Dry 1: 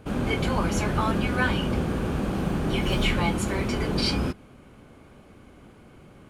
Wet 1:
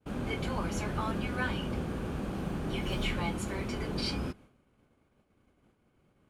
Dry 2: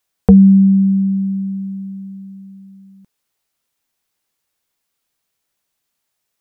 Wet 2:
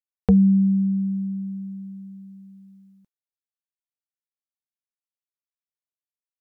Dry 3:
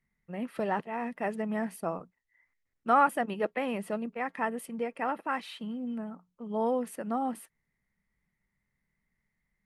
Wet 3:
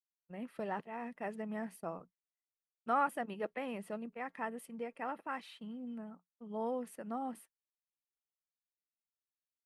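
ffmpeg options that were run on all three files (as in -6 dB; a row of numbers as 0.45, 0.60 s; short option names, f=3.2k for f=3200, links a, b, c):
-af "agate=range=-33dB:threshold=-41dB:ratio=3:detection=peak,volume=-8.5dB"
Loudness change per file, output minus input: -8.5, -8.5, -8.5 LU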